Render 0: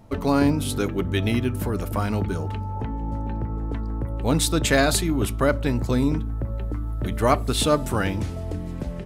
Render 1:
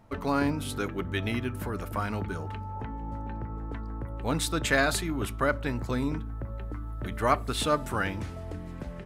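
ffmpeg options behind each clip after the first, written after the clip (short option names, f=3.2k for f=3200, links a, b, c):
-af "equalizer=f=1.5k:t=o:w=1.7:g=7.5,volume=-8.5dB"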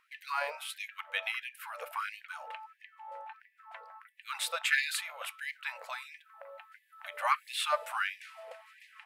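-af "equalizer=f=400:t=o:w=0.67:g=10,equalizer=f=2.5k:t=o:w=0.67:g=7,equalizer=f=6.3k:t=o:w=0.67:g=-5,afftfilt=real='re*gte(b*sr/1024,470*pow(1700/470,0.5+0.5*sin(2*PI*1.5*pts/sr)))':imag='im*gte(b*sr/1024,470*pow(1700/470,0.5+0.5*sin(2*PI*1.5*pts/sr)))':win_size=1024:overlap=0.75,volume=-3dB"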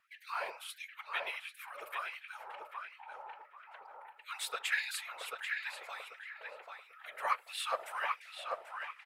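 -filter_complex "[0:a]afftfilt=real='hypot(re,im)*cos(2*PI*random(0))':imag='hypot(re,im)*sin(2*PI*random(1))':win_size=512:overlap=0.75,asplit=2[a][b];[b]adelay=789,lowpass=f=2.5k:p=1,volume=-3dB,asplit=2[c][d];[d]adelay=789,lowpass=f=2.5k:p=1,volume=0.28,asplit=2[e][f];[f]adelay=789,lowpass=f=2.5k:p=1,volume=0.28,asplit=2[g][h];[h]adelay=789,lowpass=f=2.5k:p=1,volume=0.28[i];[c][e][g][i]amix=inputs=4:normalize=0[j];[a][j]amix=inputs=2:normalize=0,volume=1dB"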